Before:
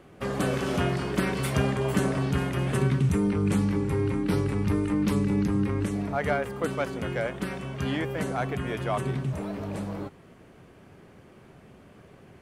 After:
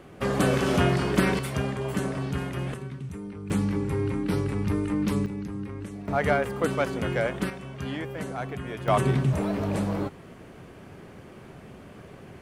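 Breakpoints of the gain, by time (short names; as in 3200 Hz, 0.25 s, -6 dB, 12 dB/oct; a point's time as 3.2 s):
+4 dB
from 1.39 s -3.5 dB
from 2.74 s -13 dB
from 3.5 s -1 dB
from 5.26 s -9 dB
from 6.08 s +3 dB
from 7.5 s -4 dB
from 8.88 s +6 dB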